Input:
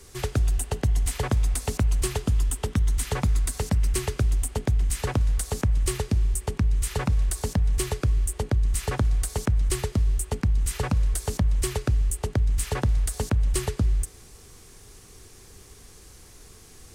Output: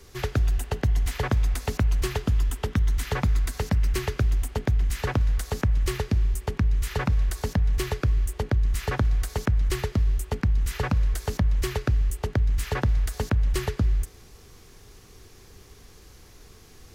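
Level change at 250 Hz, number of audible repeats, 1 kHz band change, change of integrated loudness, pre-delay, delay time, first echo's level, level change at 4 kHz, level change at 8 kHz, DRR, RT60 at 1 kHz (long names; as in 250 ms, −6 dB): 0.0 dB, no echo audible, +1.0 dB, 0.0 dB, no reverb audible, no echo audible, no echo audible, −0.5 dB, −8.0 dB, no reverb audible, no reverb audible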